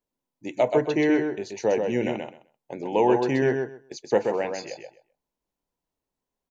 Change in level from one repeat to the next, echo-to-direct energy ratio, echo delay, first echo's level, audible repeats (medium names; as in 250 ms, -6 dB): -15.5 dB, -5.0 dB, 129 ms, -5.0 dB, 2